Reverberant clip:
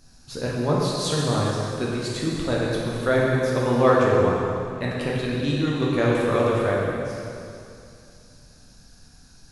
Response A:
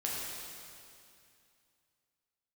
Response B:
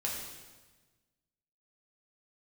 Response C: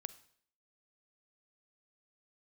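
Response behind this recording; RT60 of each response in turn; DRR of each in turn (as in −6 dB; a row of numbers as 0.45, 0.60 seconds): A; 2.5, 1.3, 0.60 seconds; −5.5, −3.5, 15.0 decibels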